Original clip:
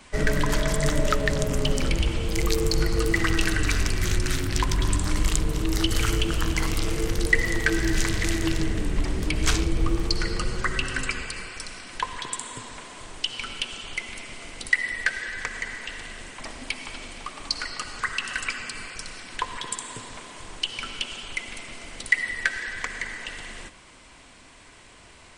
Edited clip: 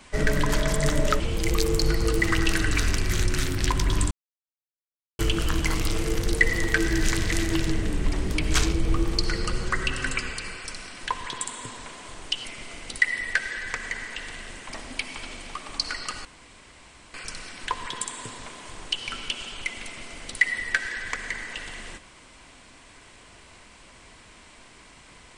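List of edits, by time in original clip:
0:01.20–0:02.12: remove
0:05.03–0:06.11: silence
0:13.37–0:14.16: remove
0:17.96–0:18.85: fill with room tone

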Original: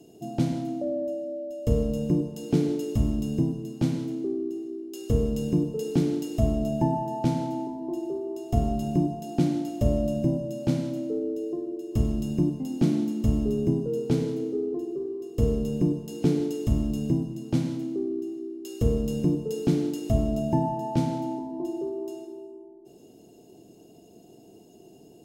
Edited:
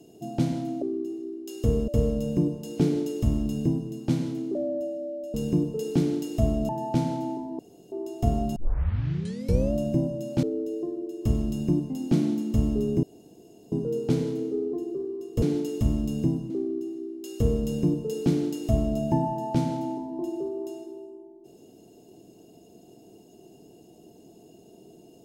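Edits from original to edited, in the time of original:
0:00.82–0:01.61: swap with 0:04.28–0:05.34
0:06.69–0:06.99: remove
0:07.89–0:08.22: fill with room tone
0:08.86: tape start 1.17 s
0:10.73–0:11.13: remove
0:13.73: splice in room tone 0.69 s
0:15.43–0:16.28: remove
0:17.36–0:17.91: remove

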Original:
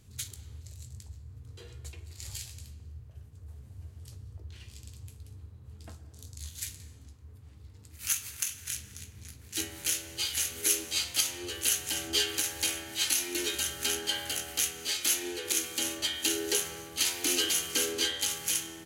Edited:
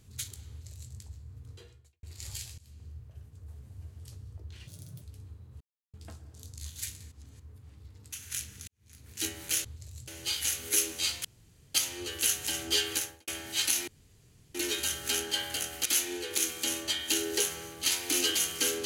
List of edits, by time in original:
0:00.49–0:00.92: duplicate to 0:10.00
0:01.52–0:02.03: fade out quadratic
0:02.58–0:02.84: fade in, from −21 dB
0:04.67–0:05.14: play speed 136%
0:05.73: splice in silence 0.33 s
0:06.91–0:07.19: reverse
0:07.92–0:08.48: remove
0:09.03–0:09.43: fade in quadratic
0:11.17: splice in room tone 0.50 s
0:12.38–0:12.70: fade out and dull
0:13.30: splice in room tone 0.67 s
0:14.61–0:15.00: remove

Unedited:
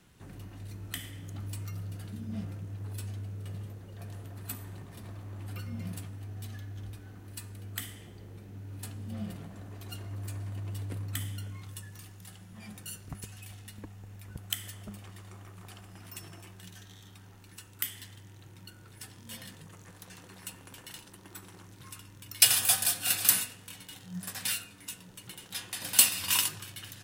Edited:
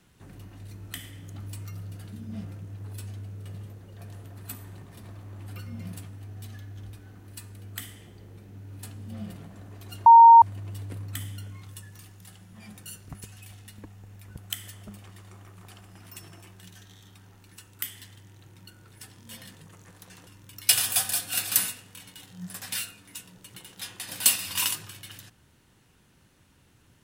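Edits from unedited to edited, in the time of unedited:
0:10.06–0:10.42: beep over 924 Hz −7.5 dBFS
0:20.27–0:22.00: remove

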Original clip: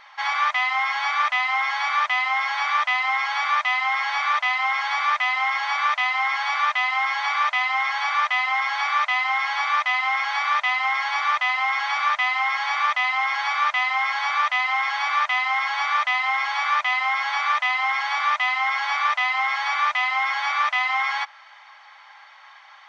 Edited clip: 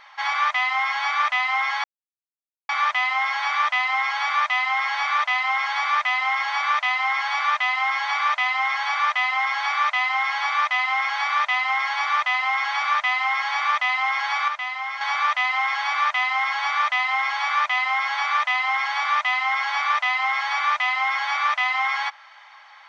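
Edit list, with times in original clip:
0:01.84: splice in silence 0.85 s
0:13.63–0:14.16: clip gain −6.5 dB

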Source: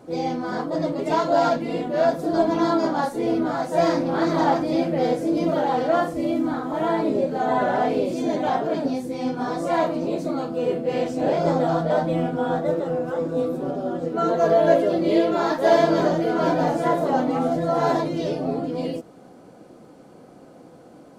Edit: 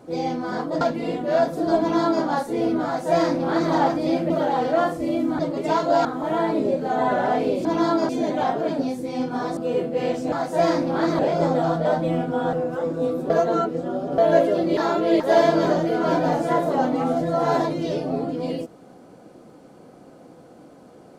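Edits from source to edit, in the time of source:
0:00.81–0:01.47: move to 0:06.55
0:02.46–0:02.90: duplicate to 0:08.15
0:03.51–0:04.38: duplicate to 0:11.24
0:04.96–0:05.46: remove
0:09.63–0:10.49: remove
0:12.58–0:12.88: remove
0:13.65–0:14.53: reverse
0:15.12–0:15.55: reverse

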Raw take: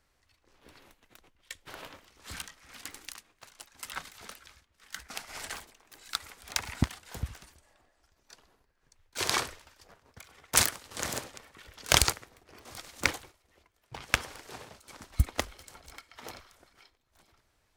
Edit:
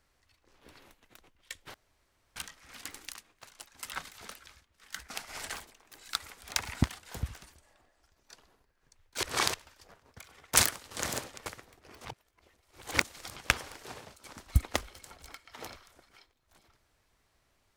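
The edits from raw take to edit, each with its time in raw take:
0:01.74–0:02.36: fill with room tone
0:09.23–0:09.54: reverse
0:11.46–0:12.10: remove
0:12.69–0:14.00: reverse

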